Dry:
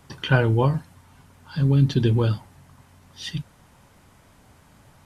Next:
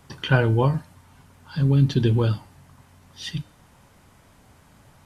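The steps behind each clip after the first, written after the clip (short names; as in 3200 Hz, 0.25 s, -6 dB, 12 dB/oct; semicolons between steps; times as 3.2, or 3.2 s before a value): de-hum 302.4 Hz, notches 38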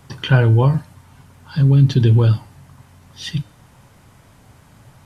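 bell 120 Hz +6.5 dB 0.56 oct; in parallel at -2 dB: limiter -13 dBFS, peak gain reduction 11 dB; on the sum: gain -1 dB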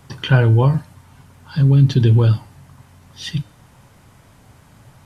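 nothing audible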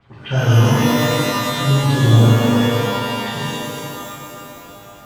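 LFO low-pass sine 8 Hz 560–3800 Hz; shimmer reverb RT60 2.9 s, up +12 st, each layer -2 dB, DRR -8.5 dB; gain -11 dB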